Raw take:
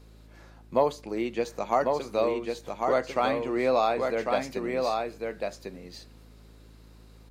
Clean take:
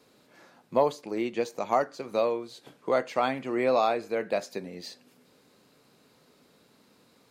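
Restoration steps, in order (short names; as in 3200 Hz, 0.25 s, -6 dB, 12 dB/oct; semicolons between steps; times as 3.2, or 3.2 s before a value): de-hum 54.1 Hz, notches 7; inverse comb 1.098 s -4 dB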